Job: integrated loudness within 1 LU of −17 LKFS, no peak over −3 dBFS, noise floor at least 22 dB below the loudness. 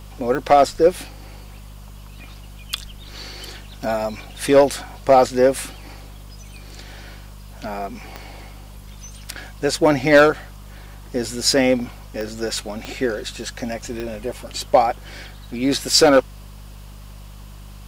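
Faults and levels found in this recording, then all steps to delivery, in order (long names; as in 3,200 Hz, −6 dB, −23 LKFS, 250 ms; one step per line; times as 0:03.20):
number of clicks 6; mains hum 50 Hz; hum harmonics up to 200 Hz; level of the hum −36 dBFS; integrated loudness −19.5 LKFS; sample peak −2.5 dBFS; target loudness −17.0 LKFS
→ click removal
hum removal 50 Hz, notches 4
level +2.5 dB
brickwall limiter −3 dBFS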